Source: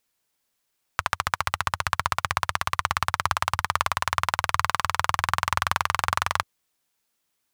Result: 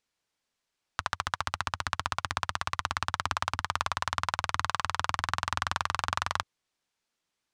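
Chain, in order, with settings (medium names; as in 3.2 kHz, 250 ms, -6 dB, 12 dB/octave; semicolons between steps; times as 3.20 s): low-pass 6.6 kHz 12 dB/octave; transformer saturation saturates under 1.6 kHz; trim -3.5 dB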